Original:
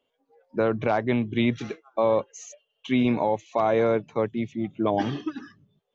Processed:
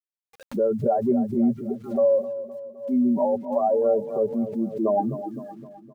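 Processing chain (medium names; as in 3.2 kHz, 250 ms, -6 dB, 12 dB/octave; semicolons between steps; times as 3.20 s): spectral contrast enhancement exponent 2.4; high-pass 43 Hz 12 dB/octave; level-controlled noise filter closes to 760 Hz, open at -23.5 dBFS; low-pass 1.4 kHz 24 dB/octave; comb 5.1 ms, depth 65%; level rider gain up to 6 dB; spectral noise reduction 23 dB; word length cut 10-bit, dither none; on a send: feedback delay 258 ms, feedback 52%, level -12.5 dB; on the sum: swell ahead of each attack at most 130 dB/s; trim -6 dB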